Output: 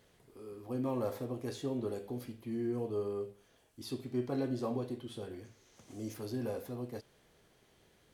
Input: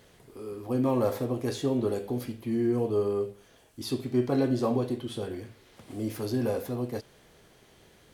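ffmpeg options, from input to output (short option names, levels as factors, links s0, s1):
-filter_complex "[0:a]asettb=1/sr,asplit=3[s0][s1][s2];[s0]atrim=end=5.444[s3];[s1]atrim=start=5.44:end=6.14,asetpts=PTS-STARTPTS,afade=t=in:d=0.004:c=qsin,afade=t=out:st=0.696:d=0.004:c=qsin,equalizer=f=6300:w=3:g=13.5[s4];[s2]atrim=start=6.136[s5];[s3][s4]acrossfade=d=0.004:c1=hsin:c2=qsin[s6];[s6][s5]acrossfade=d=0.004:c1=qsin:c2=hsin,volume=0.355"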